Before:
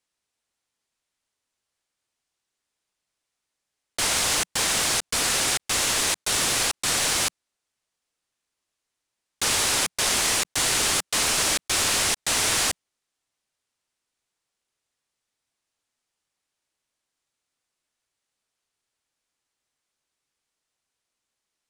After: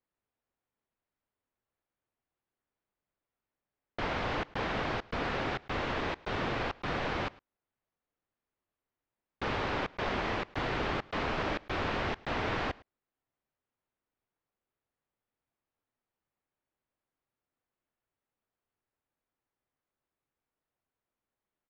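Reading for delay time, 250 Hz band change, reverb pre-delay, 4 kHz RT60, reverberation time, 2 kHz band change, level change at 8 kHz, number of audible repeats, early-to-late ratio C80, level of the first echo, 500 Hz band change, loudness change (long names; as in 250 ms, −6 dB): 108 ms, −0.5 dB, no reverb audible, no reverb audible, no reverb audible, −8.5 dB, −37.5 dB, 1, no reverb audible, −23.0 dB, −1.5 dB, −12.5 dB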